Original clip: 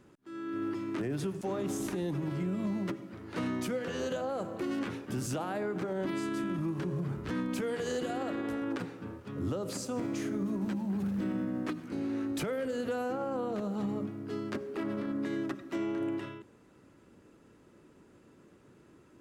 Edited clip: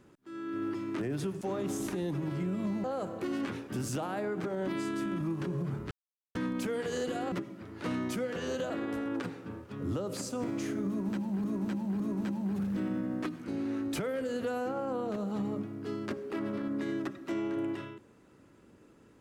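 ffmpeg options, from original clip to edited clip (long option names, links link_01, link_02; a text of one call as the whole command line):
ffmpeg -i in.wav -filter_complex "[0:a]asplit=7[link_01][link_02][link_03][link_04][link_05][link_06][link_07];[link_01]atrim=end=2.842[link_08];[link_02]atrim=start=4.218:end=7.29,asetpts=PTS-STARTPTS,afade=type=out:start_time=3.068:duration=0.004:curve=hsin,apad=pad_dur=0.44[link_09];[link_03]atrim=start=7.29:end=8.262,asetpts=PTS-STARTPTS,afade=type=in:duration=0.004:curve=hsin[link_10];[link_04]atrim=start=2.838:end=4.222[link_11];[link_05]atrim=start=8.258:end=11.002[link_12];[link_06]atrim=start=10.438:end=11.002[link_13];[link_07]atrim=start=10.438[link_14];[link_09][link_10]concat=n=2:v=0:a=1[link_15];[link_08][link_15]acrossfade=duration=0.004:curve1=hsin:curve2=hsin[link_16];[link_16][link_11]acrossfade=duration=0.004:curve1=hsin:curve2=hsin[link_17];[link_17][link_12]acrossfade=duration=0.004:curve1=hsin:curve2=hsin[link_18];[link_18][link_13]acrossfade=duration=0.004:curve1=hsin:curve2=hsin[link_19];[link_19][link_14]acrossfade=duration=0.004:curve1=hsin:curve2=hsin" out.wav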